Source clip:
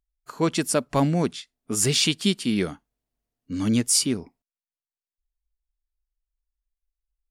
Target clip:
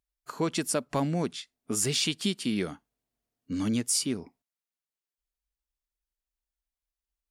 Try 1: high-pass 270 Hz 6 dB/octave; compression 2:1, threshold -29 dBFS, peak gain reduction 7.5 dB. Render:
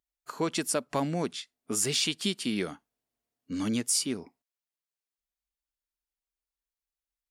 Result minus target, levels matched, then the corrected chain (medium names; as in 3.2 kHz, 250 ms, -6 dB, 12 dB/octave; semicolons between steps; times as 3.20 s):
125 Hz band -3.5 dB
high-pass 95 Hz 6 dB/octave; compression 2:1, threshold -29 dBFS, peak gain reduction 7.5 dB